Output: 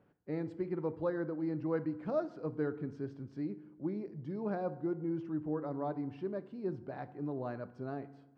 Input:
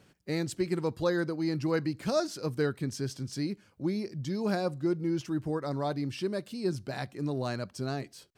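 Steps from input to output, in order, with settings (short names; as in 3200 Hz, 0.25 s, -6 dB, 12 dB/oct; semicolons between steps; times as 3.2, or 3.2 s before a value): LPF 1200 Hz 12 dB/oct; low shelf 130 Hz -8.5 dB; FDN reverb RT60 1 s, low-frequency decay 1.2×, high-frequency decay 0.6×, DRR 12.5 dB; gain -4.5 dB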